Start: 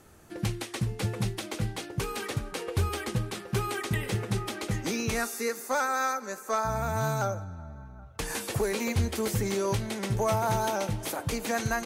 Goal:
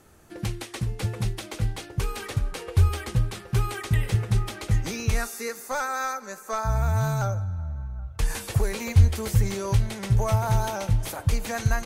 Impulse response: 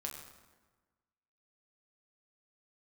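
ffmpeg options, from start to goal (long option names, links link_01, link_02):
-af "asubboost=boost=8:cutoff=93"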